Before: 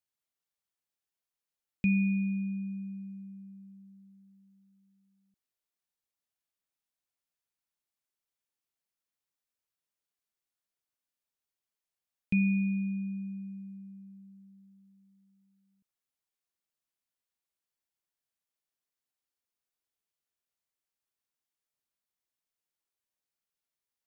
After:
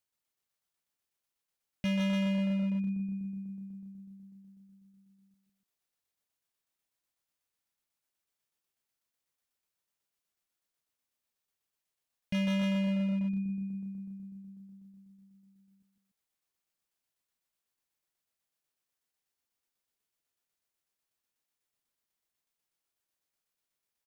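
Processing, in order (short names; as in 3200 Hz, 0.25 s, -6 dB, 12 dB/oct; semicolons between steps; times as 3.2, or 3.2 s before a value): tremolo saw down 8.1 Hz, depth 50%; loudspeakers at several distances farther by 53 m -5 dB, 100 m -10 dB; hard clip -32.5 dBFS, distortion -7 dB; gain +4.5 dB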